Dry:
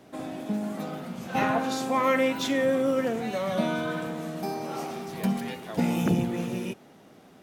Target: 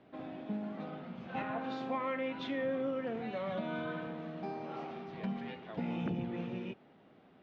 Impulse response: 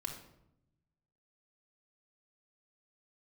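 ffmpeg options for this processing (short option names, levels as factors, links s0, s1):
-af "alimiter=limit=0.119:level=0:latency=1:release=171,lowpass=f=3500:w=0.5412,lowpass=f=3500:w=1.3066,volume=0.376"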